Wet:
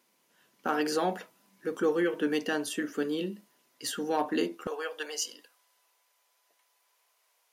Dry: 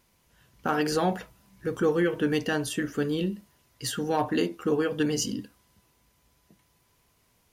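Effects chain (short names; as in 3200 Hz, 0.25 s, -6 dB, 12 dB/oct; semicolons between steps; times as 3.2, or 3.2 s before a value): HPF 220 Hz 24 dB/oct, from 4.67 s 560 Hz; gain -2.5 dB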